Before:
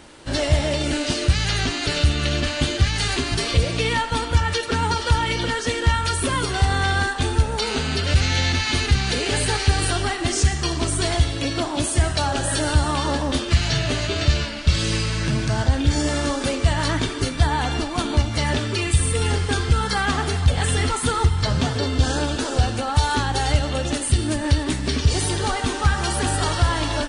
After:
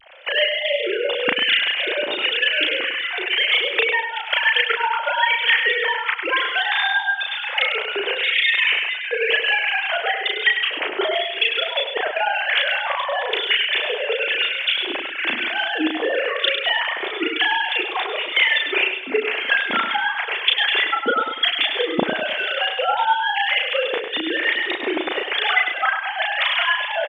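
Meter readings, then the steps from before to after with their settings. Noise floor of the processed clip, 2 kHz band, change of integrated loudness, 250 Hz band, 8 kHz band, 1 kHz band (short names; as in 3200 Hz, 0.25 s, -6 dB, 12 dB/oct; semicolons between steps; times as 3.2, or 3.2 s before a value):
-29 dBFS, +8.5 dB, +2.0 dB, -7.5 dB, under -35 dB, +1.5 dB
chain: sine-wave speech; Bessel high-pass 380 Hz, order 2; resonant high shelf 1600 Hz +7 dB, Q 1.5; transient shaper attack +9 dB, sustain -7 dB; compressor 3:1, threshold -16 dBFS, peak gain reduction 13 dB; harmonic tremolo 1 Hz, depth 70%, crossover 1200 Hz; vibrato 0.62 Hz 35 cents; doubler 35 ms -3 dB; feedback echo 0.101 s, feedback 36%, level -7.5 dB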